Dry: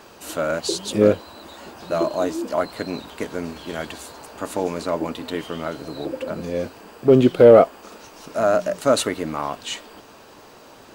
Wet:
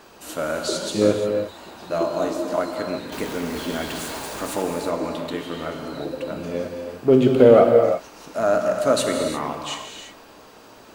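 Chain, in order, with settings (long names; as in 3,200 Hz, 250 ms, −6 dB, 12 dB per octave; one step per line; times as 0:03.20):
0:03.12–0:04.62: converter with a step at zero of −29 dBFS
reverb whose tail is shaped and stops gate 380 ms flat, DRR 2.5 dB
level −2.5 dB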